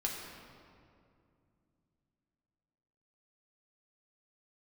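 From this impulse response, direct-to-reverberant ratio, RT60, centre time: -2.0 dB, 2.5 s, 86 ms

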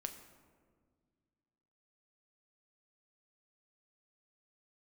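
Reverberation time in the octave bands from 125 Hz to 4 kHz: 2.6 s, 2.5 s, 2.0 s, 1.6 s, 1.2 s, 0.85 s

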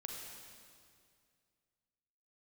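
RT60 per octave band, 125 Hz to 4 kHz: 2.6 s, 2.4 s, 2.3 s, 2.1 s, 2.0 s, 2.0 s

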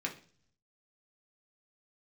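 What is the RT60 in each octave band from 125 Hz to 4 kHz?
1.0 s, 0.70 s, 0.50 s, 0.40 s, 0.45 s, 0.60 s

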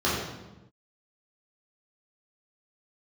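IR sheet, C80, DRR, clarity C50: 3.0 dB, -8.5 dB, 0.5 dB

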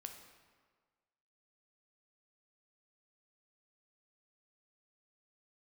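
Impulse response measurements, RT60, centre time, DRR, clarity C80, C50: 1.6 s, 30 ms, 4.5 dB, 8.5 dB, 6.5 dB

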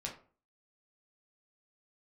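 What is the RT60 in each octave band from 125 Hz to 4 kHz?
0.45 s, 0.45 s, 0.45 s, 0.40 s, 0.30 s, 0.25 s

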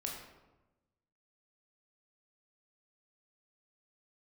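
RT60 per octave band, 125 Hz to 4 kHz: 1.5 s, 1.3 s, 1.1 s, 1.0 s, 0.80 s, 0.65 s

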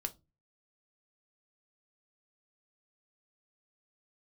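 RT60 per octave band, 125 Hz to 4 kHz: 0.50 s, 0.40 s, 0.30 s, 0.20 s, 0.15 s, 0.20 s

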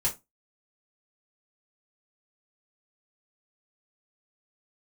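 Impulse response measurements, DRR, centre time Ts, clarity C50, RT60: -6.5 dB, 15 ms, 15.0 dB, 0.20 s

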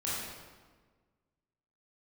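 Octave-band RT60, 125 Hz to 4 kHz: 1.8 s, 1.8 s, 1.6 s, 1.4 s, 1.2 s, 1.0 s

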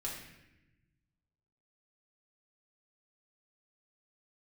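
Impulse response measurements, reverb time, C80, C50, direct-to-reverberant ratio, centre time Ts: 0.95 s, 5.5 dB, 3.0 dB, -5.0 dB, 50 ms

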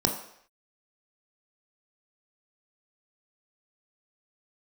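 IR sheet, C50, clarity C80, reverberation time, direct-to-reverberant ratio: 7.0 dB, 10.5 dB, no single decay rate, 2.5 dB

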